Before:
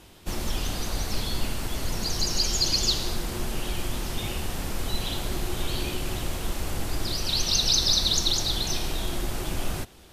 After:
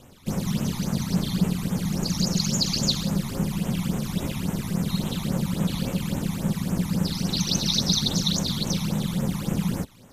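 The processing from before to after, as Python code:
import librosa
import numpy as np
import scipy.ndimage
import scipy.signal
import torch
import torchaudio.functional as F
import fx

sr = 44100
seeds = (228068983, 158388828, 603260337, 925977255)

y = x * np.sin(2.0 * np.pi * 180.0 * np.arange(len(x)) / sr)
y = fx.phaser_stages(y, sr, stages=12, low_hz=470.0, high_hz=4600.0, hz=3.6, feedback_pct=25)
y = y * 10.0 ** (4.0 / 20.0)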